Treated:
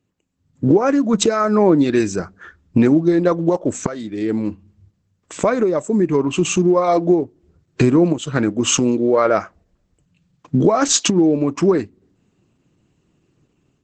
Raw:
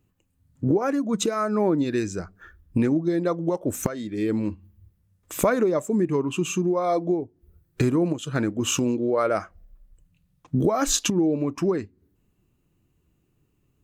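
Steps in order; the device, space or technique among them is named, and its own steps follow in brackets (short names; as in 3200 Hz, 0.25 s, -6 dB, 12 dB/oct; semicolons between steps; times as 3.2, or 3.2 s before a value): video call (HPF 120 Hz 12 dB/oct; AGC gain up to 10 dB; Opus 12 kbps 48000 Hz)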